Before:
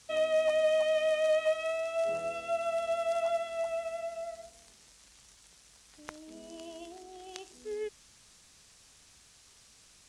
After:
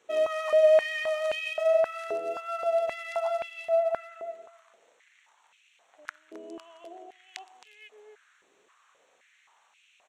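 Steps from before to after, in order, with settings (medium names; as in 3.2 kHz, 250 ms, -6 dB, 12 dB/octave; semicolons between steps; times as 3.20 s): local Wiener filter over 9 samples; delay 266 ms -12.5 dB; step-sequenced high-pass 3.8 Hz 390–2600 Hz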